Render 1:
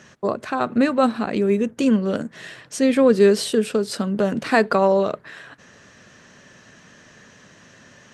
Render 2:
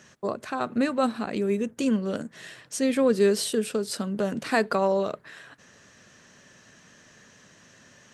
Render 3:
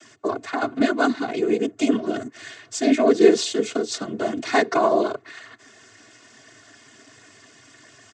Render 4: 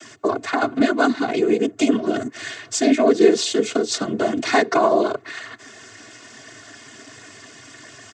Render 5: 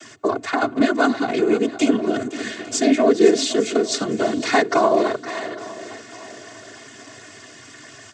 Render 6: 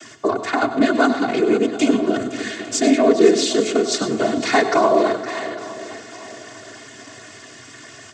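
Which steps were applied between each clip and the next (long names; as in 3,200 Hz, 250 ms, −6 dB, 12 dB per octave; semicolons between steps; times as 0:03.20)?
high-shelf EQ 6,200 Hz +9 dB; level −6.5 dB
cochlear-implant simulation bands 16; comb filter 2.8 ms, depth 88%; level +3 dB
downward compressor 1.5 to 1, threshold −30 dBFS, peak gain reduction 8 dB; level +7.5 dB
feedback echo with a long and a short gap by turns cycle 855 ms, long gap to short 1.5 to 1, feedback 31%, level −14 dB
in parallel at −10 dB: soft clipping −11 dBFS, distortion −15 dB; on the sum: convolution reverb RT60 0.40 s, pre-delay 93 ms, DRR 10.5 dB; level −1 dB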